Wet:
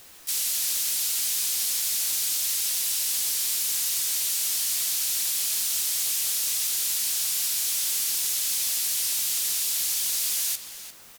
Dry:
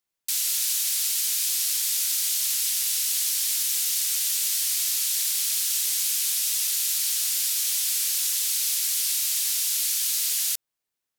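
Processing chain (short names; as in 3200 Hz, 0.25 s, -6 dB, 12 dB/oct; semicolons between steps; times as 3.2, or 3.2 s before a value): requantised 8-bit, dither triangular; harmoniser -5 st -16 dB, -4 st -17 dB, +4 st -7 dB; hard clip -19.5 dBFS, distortion -17 dB; outdoor echo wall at 60 m, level -8 dB; gain -1.5 dB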